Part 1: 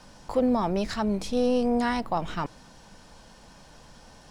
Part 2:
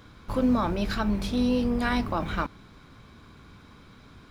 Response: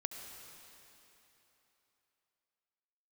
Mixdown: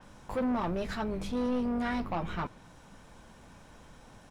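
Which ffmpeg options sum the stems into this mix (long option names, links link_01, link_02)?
-filter_complex "[0:a]equalizer=frequency=4500:width_type=o:width=0.6:gain=-12.5,volume=-3.5dB[link_01];[1:a]adelay=7.3,volume=-8.5dB[link_02];[link_01][link_02]amix=inputs=2:normalize=0,asoftclip=type=tanh:threshold=-26.5dB,adynamicequalizer=threshold=0.00158:dfrequency=5100:dqfactor=0.7:tfrequency=5100:tqfactor=0.7:attack=5:release=100:ratio=0.375:range=2.5:mode=cutabove:tftype=highshelf"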